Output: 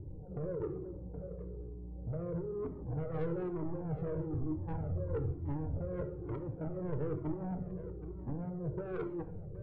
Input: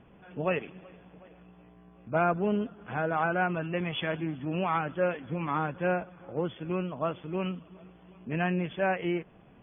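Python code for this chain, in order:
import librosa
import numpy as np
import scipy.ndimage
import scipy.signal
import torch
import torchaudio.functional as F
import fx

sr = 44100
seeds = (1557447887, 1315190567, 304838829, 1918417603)

y = fx.octave_divider(x, sr, octaves=1, level_db=-4.0, at=(4.33, 5.77))
y = scipy.signal.sosfilt(scipy.signal.cheby2(4, 60, 1600.0, 'lowpass', fs=sr, output='sos'), y)
y = fx.peak_eq(y, sr, hz=93.0, db=9.0, octaves=0.49)
y = y + 0.71 * np.pad(y, (int(2.2 * sr / 1000.0), 0))[:len(y)]
y = fx.over_compress(y, sr, threshold_db=-38.0, ratio=-1.0)
y = 10.0 ** (-36.5 / 20.0) * np.tanh(y / 10.0 ** (-36.5 / 20.0))
y = y + 10.0 ** (-14.0 / 20.0) * np.pad(y, (int(772 * sr / 1000.0), 0))[:len(y)]
y = fx.room_shoebox(y, sr, seeds[0], volume_m3=250.0, walls='mixed', distance_m=0.45)
y = fx.comb_cascade(y, sr, direction='falling', hz=1.1)
y = y * librosa.db_to_amplitude(7.5)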